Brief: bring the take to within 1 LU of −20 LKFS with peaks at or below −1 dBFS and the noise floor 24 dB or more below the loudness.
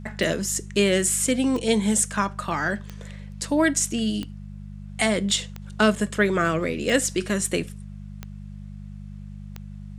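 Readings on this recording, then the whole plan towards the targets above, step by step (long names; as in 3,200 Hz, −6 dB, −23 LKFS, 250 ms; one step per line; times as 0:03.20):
number of clicks 8; mains hum 50 Hz; hum harmonics up to 200 Hz; level of the hum −34 dBFS; integrated loudness −23.0 LKFS; sample peak −5.0 dBFS; target loudness −20.0 LKFS
→ click removal
hum removal 50 Hz, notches 4
level +3 dB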